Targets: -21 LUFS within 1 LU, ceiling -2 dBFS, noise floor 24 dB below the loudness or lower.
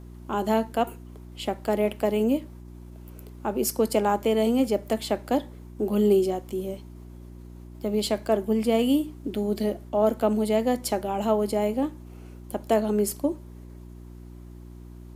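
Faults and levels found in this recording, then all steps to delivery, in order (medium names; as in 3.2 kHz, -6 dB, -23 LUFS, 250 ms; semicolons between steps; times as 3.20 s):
hum 60 Hz; highest harmonic 360 Hz; hum level -41 dBFS; loudness -26.0 LUFS; peak level -9.5 dBFS; loudness target -21.0 LUFS
-> de-hum 60 Hz, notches 6; trim +5 dB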